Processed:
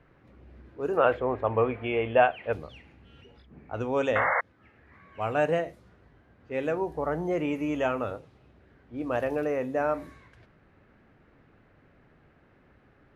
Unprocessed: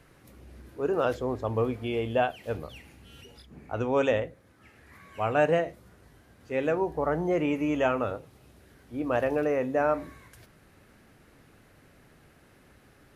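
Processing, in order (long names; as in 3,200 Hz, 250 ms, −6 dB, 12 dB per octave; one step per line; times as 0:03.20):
low-pass that shuts in the quiet parts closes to 2,100 Hz, open at −25 dBFS
0:00.97–0:02.53: drawn EQ curve 270 Hz 0 dB, 600 Hz +7 dB, 2,500 Hz +9 dB, 5,700 Hz −21 dB
0:04.15–0:04.41: sound drawn into the spectrogram noise 470–2,200 Hz −23 dBFS
level −2 dB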